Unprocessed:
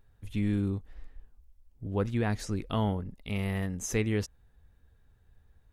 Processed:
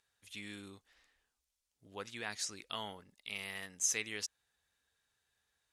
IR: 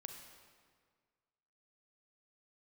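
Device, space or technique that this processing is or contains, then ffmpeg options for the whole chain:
piezo pickup straight into a mixer: -af "lowpass=6900,aderivative,volume=2.66"

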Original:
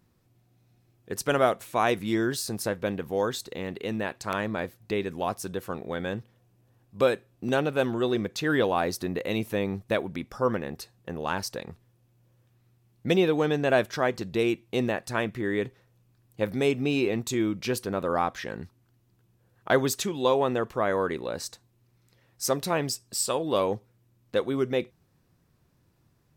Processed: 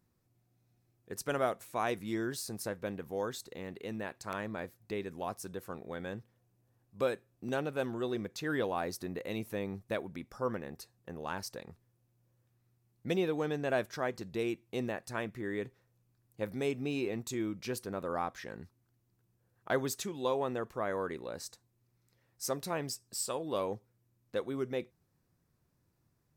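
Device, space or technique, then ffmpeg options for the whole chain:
exciter from parts: -filter_complex "[0:a]asplit=2[s0][s1];[s1]highpass=f=2900:w=0.5412,highpass=f=2900:w=1.3066,asoftclip=type=tanh:threshold=0.0251,volume=0.422[s2];[s0][s2]amix=inputs=2:normalize=0,volume=0.355"

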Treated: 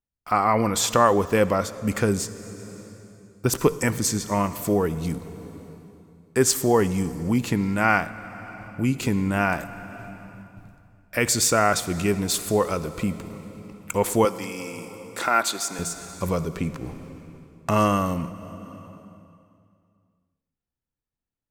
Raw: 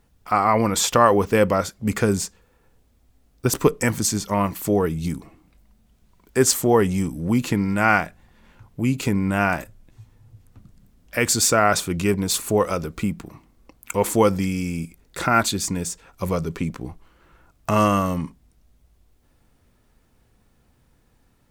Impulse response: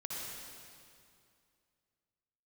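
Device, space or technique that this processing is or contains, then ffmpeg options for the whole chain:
compressed reverb return: -filter_complex "[0:a]asettb=1/sr,asplit=3[s0][s1][s2];[s0]atrim=end=14.254[s3];[s1]atrim=start=14.25:end=15.79,asetpts=PTS-STARTPTS,afade=t=in:d=0.004:c=qsin,afade=t=out:st=1.536:d=0.004:c=qsin,highpass=410[s4];[s2]atrim=start=15.786[s5];[s3][s4]acrossfade=d=0.004:c1=hsin:c2=qsin[s6];[s6][s5]acrossfade=d=0.004:c1=qsin:c2=hsin,agate=range=0.0282:threshold=0.00398:ratio=16:detection=peak,asplit=2[s7][s8];[1:a]atrim=start_sample=2205[s9];[s8][s9]afir=irnorm=-1:irlink=0,acompressor=threshold=0.0447:ratio=6,volume=0.631[s10];[s7][s10]amix=inputs=2:normalize=0,volume=0.708"

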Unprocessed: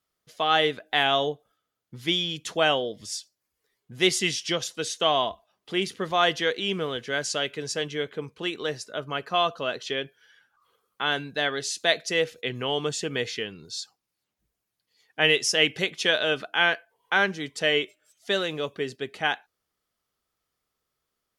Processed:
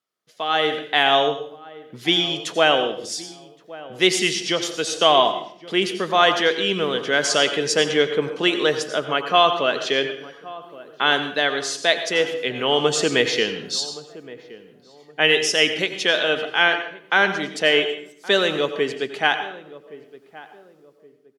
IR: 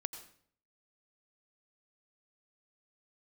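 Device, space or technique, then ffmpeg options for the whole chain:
far laptop microphone: -filter_complex "[0:a]highshelf=f=10000:g=-6.5[s0];[1:a]atrim=start_sample=2205[s1];[s0][s1]afir=irnorm=-1:irlink=0,highpass=190,dynaudnorm=f=150:g=9:m=5.96,asplit=2[s2][s3];[s3]adelay=1120,lowpass=f=950:p=1,volume=0.141,asplit=2[s4][s5];[s5]adelay=1120,lowpass=f=950:p=1,volume=0.34,asplit=2[s6][s7];[s7]adelay=1120,lowpass=f=950:p=1,volume=0.34[s8];[s2][s4][s6][s8]amix=inputs=4:normalize=0,volume=0.891"

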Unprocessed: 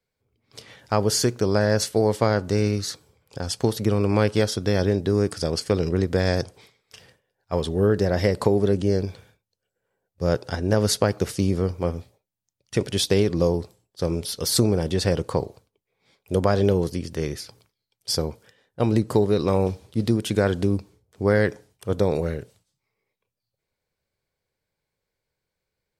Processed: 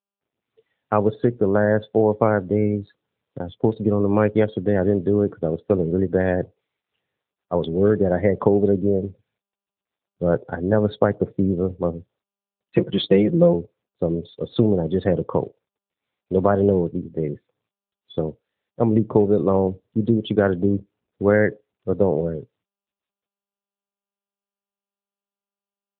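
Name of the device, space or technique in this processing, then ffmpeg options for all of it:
mobile call with aggressive noise cancelling: -filter_complex "[0:a]asettb=1/sr,asplit=3[s0][s1][s2];[s0]atrim=end=12.754[s3];[s1]atrim=start=12.75:end=13.53,asetpts=PTS-STARTPTS,afade=t=in:d=0.004:c=qsin,afade=t=out:st=0.776:d=0.004:c=qsin,aecho=1:1:5.9:0.69,atrim=end_sample=34398[s4];[s2]atrim=start=13.526[s5];[s3][s4]acrossfade=d=0.004:c1=hsin:c2=qsin[s6];[s6][s5]acrossfade=d=0.004:c1=qsin:c2=hsin,adynamicequalizer=threshold=0.00282:dfrequency=2900:dqfactor=3.1:tfrequency=2900:tqfactor=3.1:attack=5:release=100:ratio=0.375:range=2.5:mode=cutabove:tftype=bell,highpass=110,afftdn=nr=29:nf=-31,volume=1.5" -ar 8000 -c:a libopencore_amrnb -b:a 10200

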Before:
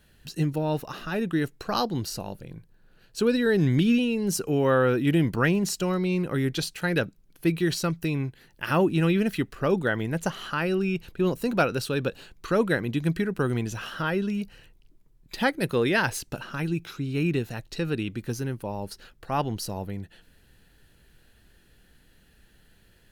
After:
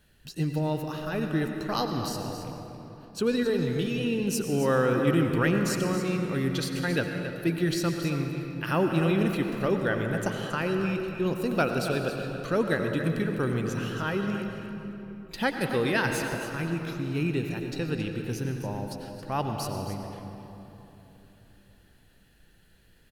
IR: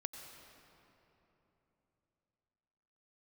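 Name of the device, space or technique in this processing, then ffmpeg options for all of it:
cave: -filter_complex "[0:a]asettb=1/sr,asplit=3[s0][s1][s2];[s0]atrim=end=3.434[s3];[s1]atrim=start=3.43:end=4.04,asetpts=PTS-STARTPTS,afade=t=in:d=0.004:c=qsin,afade=t=out:st=0.606:d=0.004:c=qsin,equalizer=f=100:t=o:w=0.67:g=-10,equalizer=f=250:t=o:w=0.67:g=-10,equalizer=f=1600:t=o:w=0.67:g=-11[s4];[s2]atrim=start=4.036[s5];[s3][s4]acrossfade=d=0.004:c1=hsin:c2=qsin[s6];[s6][s5]acrossfade=d=0.004:c1=qsin:c2=hsin,aecho=1:1:273:0.282[s7];[1:a]atrim=start_sample=2205[s8];[s7][s8]afir=irnorm=-1:irlink=0"

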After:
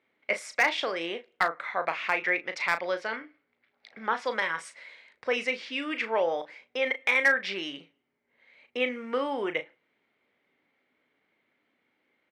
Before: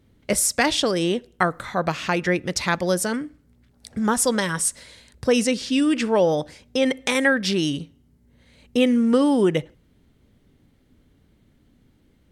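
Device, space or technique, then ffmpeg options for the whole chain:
megaphone: -filter_complex "[0:a]highpass=640,lowpass=2600,equalizer=f=2200:t=o:w=0.35:g=10,asoftclip=type=hard:threshold=0.299,asplit=2[s0][s1];[s1]adelay=36,volume=0.316[s2];[s0][s2]amix=inputs=2:normalize=0,asettb=1/sr,asplit=3[s3][s4][s5];[s3]atrim=end=2.794[s6];[s4]atrim=start=2.79:end=4.3,asetpts=PTS-STARTPTS,afade=t=in:d=0.004:c=qsin,afade=t=out:st=1.506:d=0.004:c=qsin,highshelf=f=6300:t=q:w=1.5:g=-12.5[s7];[s5]atrim=start=4.296[s8];[s6][s7]acrossfade=d=0.004:c1=hsin:c2=qsin[s9];[s9][s8]acrossfade=d=0.004:c1=qsin:c2=hsin,volume=0.668"

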